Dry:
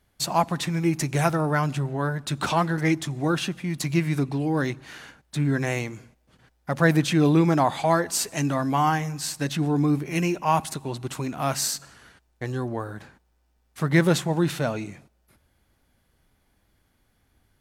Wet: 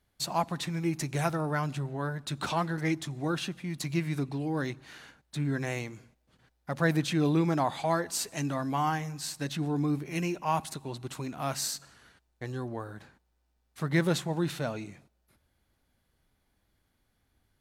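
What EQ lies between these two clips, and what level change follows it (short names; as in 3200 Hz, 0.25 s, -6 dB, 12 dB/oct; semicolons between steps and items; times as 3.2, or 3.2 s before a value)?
bell 4000 Hz +3 dB 0.35 oct; -7.0 dB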